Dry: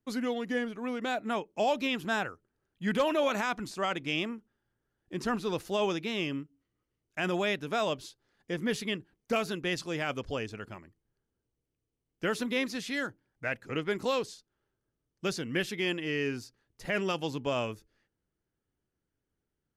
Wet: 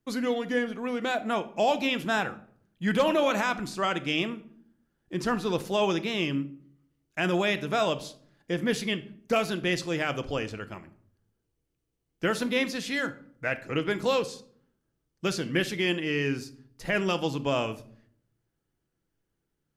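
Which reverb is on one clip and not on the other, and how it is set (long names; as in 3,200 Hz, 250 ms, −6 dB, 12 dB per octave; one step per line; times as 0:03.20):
rectangular room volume 810 cubic metres, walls furnished, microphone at 0.72 metres
level +3.5 dB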